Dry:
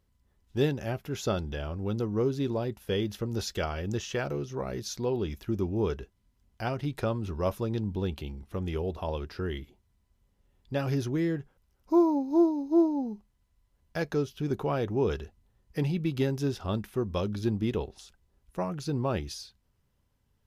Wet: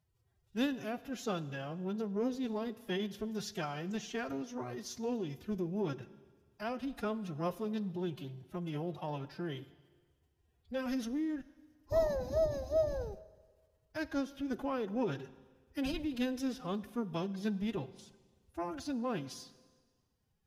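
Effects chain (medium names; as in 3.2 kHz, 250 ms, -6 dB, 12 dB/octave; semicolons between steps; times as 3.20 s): formant-preserving pitch shift +11 st; Schroeder reverb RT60 1.5 s, combs from 33 ms, DRR 16.5 dB; trim -6.5 dB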